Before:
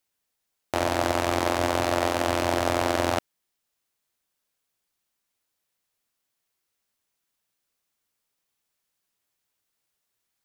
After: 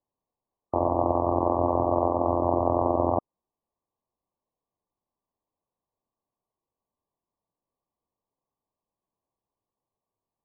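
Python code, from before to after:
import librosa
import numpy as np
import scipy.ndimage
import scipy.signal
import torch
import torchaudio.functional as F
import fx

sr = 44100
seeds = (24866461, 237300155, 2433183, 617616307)

y = fx.brickwall_lowpass(x, sr, high_hz=1200.0)
y = y * 10.0 ** (1.5 / 20.0)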